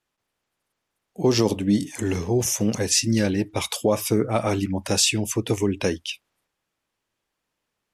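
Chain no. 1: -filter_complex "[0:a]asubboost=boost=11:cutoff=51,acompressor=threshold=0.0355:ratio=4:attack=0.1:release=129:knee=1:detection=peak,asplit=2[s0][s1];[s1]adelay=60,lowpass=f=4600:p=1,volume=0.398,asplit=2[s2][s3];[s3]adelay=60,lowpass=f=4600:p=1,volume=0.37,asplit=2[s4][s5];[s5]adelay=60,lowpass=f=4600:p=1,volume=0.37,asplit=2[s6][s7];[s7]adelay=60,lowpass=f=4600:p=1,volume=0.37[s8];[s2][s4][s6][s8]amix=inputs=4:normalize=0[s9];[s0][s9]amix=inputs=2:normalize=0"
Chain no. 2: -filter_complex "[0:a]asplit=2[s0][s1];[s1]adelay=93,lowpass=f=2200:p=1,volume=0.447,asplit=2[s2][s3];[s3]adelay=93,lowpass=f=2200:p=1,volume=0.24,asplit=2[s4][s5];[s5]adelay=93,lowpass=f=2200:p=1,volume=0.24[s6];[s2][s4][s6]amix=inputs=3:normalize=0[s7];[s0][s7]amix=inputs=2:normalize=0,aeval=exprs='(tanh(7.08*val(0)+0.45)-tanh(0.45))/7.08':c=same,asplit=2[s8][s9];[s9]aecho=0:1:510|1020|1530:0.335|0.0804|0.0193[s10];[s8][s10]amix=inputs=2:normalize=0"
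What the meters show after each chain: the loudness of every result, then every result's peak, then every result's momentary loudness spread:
-34.0 LUFS, -25.0 LUFS; -21.5 dBFS, -11.5 dBFS; 4 LU, 10 LU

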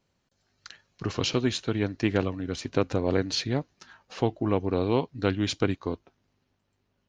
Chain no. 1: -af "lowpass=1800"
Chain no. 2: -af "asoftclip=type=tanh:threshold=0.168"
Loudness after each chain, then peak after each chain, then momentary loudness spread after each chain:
-29.0 LUFS, -29.5 LUFS; -9.5 dBFS, -15.5 dBFS; 8 LU, 12 LU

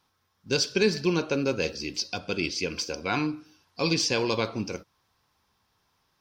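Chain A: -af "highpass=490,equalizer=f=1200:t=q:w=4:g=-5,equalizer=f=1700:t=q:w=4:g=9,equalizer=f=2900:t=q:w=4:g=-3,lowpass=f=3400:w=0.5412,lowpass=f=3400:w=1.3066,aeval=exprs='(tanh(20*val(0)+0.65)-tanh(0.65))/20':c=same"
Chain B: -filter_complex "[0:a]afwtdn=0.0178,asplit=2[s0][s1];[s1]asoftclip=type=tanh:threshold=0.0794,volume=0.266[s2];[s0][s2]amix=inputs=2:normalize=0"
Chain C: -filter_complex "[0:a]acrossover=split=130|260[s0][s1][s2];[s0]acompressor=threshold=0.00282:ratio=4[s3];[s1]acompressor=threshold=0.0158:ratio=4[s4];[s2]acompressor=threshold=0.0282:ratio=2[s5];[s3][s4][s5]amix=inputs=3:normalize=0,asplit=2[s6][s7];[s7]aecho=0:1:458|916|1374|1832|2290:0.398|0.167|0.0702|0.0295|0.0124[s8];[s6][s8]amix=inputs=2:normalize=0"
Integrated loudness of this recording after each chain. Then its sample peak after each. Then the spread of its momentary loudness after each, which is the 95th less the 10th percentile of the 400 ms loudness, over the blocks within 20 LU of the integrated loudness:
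-36.5 LUFS, -26.5 LUFS, -31.5 LUFS; -22.0 dBFS, -10.0 dBFS, -15.0 dBFS; 11 LU, 10 LU, 13 LU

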